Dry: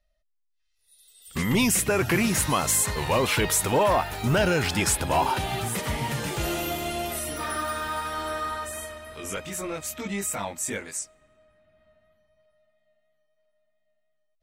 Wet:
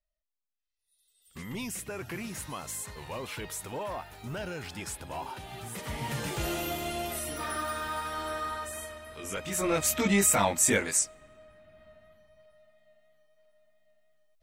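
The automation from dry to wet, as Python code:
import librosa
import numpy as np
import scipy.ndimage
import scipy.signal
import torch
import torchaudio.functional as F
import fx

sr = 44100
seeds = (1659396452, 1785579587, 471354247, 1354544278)

y = fx.gain(x, sr, db=fx.line((5.45, -15.0), (6.17, -4.0), (9.31, -4.0), (9.77, 6.5)))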